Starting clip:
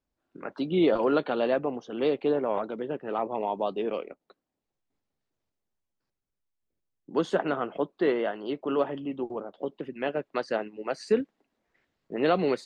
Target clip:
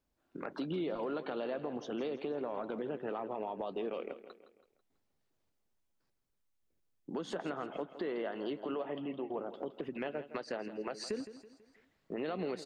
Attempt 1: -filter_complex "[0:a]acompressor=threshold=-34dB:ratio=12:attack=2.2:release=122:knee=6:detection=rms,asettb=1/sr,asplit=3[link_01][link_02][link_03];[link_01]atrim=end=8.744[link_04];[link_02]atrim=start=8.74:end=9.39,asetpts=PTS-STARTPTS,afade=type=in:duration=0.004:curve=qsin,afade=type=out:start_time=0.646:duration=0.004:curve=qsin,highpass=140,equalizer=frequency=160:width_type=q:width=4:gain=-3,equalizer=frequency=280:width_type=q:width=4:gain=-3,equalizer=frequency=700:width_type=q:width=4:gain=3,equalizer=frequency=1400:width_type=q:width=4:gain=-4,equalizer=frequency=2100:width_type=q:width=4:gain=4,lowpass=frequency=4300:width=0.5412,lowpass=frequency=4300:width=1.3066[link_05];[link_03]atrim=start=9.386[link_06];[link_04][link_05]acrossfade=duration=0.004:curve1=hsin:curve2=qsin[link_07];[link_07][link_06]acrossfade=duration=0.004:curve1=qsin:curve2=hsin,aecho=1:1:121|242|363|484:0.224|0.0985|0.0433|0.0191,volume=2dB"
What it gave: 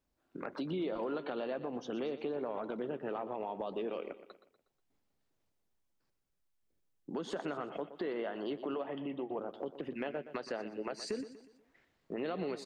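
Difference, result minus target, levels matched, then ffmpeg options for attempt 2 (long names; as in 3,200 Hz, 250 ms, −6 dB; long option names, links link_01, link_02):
echo 43 ms early
-filter_complex "[0:a]acompressor=threshold=-34dB:ratio=12:attack=2.2:release=122:knee=6:detection=rms,asettb=1/sr,asplit=3[link_01][link_02][link_03];[link_01]atrim=end=8.744[link_04];[link_02]atrim=start=8.74:end=9.39,asetpts=PTS-STARTPTS,afade=type=in:duration=0.004:curve=qsin,afade=type=out:start_time=0.646:duration=0.004:curve=qsin,highpass=140,equalizer=frequency=160:width_type=q:width=4:gain=-3,equalizer=frequency=280:width_type=q:width=4:gain=-3,equalizer=frequency=700:width_type=q:width=4:gain=3,equalizer=frequency=1400:width_type=q:width=4:gain=-4,equalizer=frequency=2100:width_type=q:width=4:gain=4,lowpass=frequency=4300:width=0.5412,lowpass=frequency=4300:width=1.3066[link_05];[link_03]atrim=start=9.386[link_06];[link_04][link_05]acrossfade=duration=0.004:curve1=hsin:curve2=qsin[link_07];[link_07][link_06]acrossfade=duration=0.004:curve1=qsin:curve2=hsin,aecho=1:1:164|328|492|656:0.224|0.0985|0.0433|0.0191,volume=2dB"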